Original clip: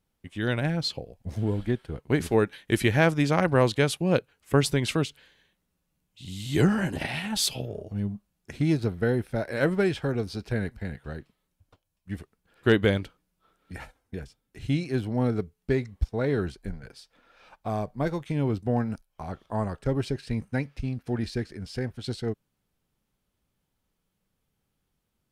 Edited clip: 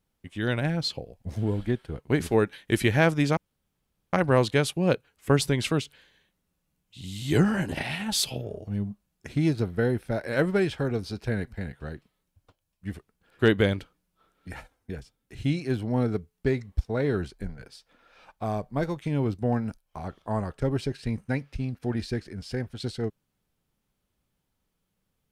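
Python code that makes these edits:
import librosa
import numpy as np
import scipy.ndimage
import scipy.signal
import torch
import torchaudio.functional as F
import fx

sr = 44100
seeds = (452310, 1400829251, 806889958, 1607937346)

y = fx.edit(x, sr, fx.insert_room_tone(at_s=3.37, length_s=0.76), tone=tone)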